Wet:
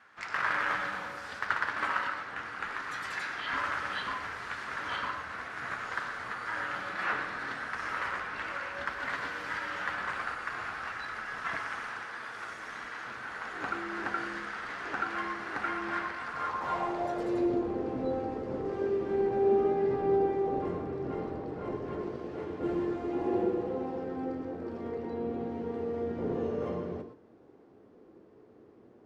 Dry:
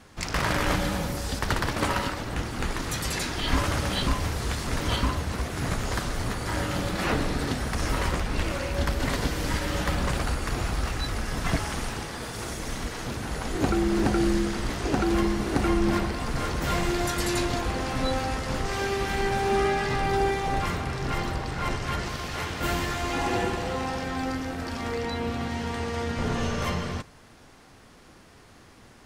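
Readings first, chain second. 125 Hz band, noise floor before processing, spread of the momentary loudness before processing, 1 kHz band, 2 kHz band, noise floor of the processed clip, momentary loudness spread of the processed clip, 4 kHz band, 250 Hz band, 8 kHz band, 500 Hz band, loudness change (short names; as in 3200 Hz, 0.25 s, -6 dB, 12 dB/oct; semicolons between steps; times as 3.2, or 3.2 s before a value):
-17.0 dB, -52 dBFS, 7 LU, -4.5 dB, -2.0 dB, -57 dBFS, 9 LU, -13.0 dB, -7.5 dB, -20.5 dB, -2.0 dB, -5.5 dB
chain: low shelf 250 Hz +3.5 dB; flange 0.17 Hz, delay 8.8 ms, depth 1.6 ms, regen -66%; band-pass sweep 1500 Hz -> 380 Hz, 16.25–17.54; non-linear reverb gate 0.14 s rising, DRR 8 dB; gain +6 dB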